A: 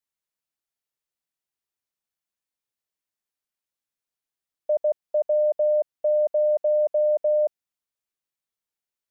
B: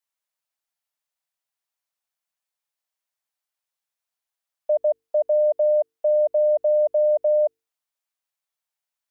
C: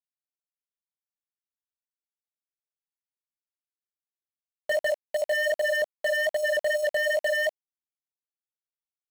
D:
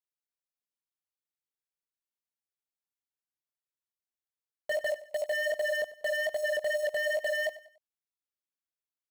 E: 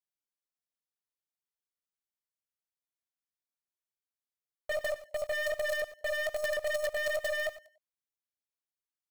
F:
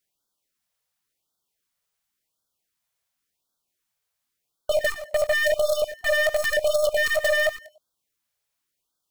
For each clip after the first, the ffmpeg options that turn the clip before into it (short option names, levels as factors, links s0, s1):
-af "lowshelf=f=500:t=q:w=1.5:g=-8.5,bandreject=f=50:t=h:w=6,bandreject=f=100:t=h:w=6,bandreject=f=150:t=h:w=6,bandreject=f=200:t=h:w=6,bandreject=f=250:t=h:w=6,bandreject=f=300:t=h:w=6,bandreject=f=350:t=h:w=6,bandreject=f=400:t=h:w=6,bandreject=f=450:t=h:w=6,volume=1.26"
-af "aeval=exprs='val(0)*gte(abs(val(0)),0.0316)':c=same,flanger=delay=19:depth=2.9:speed=2.5,aeval=exprs='0.075*(abs(mod(val(0)/0.075+3,4)-2)-1)':c=same,volume=1.41"
-af "aecho=1:1:96|192|288:0.141|0.0523|0.0193,volume=0.562"
-filter_complex "[0:a]bandreject=f=2700:w=16,asplit=2[s0][s1];[s1]acrusher=bits=5:dc=4:mix=0:aa=0.000001,volume=0.708[s2];[s0][s2]amix=inputs=2:normalize=0,volume=0.562"
-filter_complex "[0:a]asplit=2[s0][s1];[s1]alimiter=level_in=2.37:limit=0.0631:level=0:latency=1,volume=0.422,volume=1.12[s2];[s0][s2]amix=inputs=2:normalize=0,afftfilt=real='re*(1-between(b*sr/1024,260*pow(2300/260,0.5+0.5*sin(2*PI*0.92*pts/sr))/1.41,260*pow(2300/260,0.5+0.5*sin(2*PI*0.92*pts/sr))*1.41))':imag='im*(1-between(b*sr/1024,260*pow(2300/260,0.5+0.5*sin(2*PI*0.92*pts/sr))/1.41,260*pow(2300/260,0.5+0.5*sin(2*PI*0.92*pts/sr))*1.41))':win_size=1024:overlap=0.75,volume=2.51"